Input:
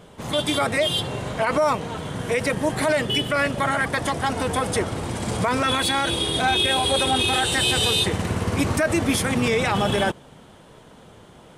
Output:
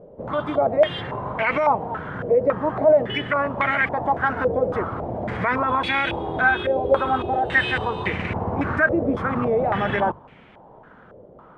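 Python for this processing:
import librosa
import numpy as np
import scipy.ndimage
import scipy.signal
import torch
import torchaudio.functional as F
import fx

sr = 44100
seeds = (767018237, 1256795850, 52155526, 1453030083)

y = fx.hum_notches(x, sr, base_hz=50, count=3)
y = fx.filter_held_lowpass(y, sr, hz=3.6, low_hz=550.0, high_hz=2300.0)
y = y * librosa.db_to_amplitude(-3.0)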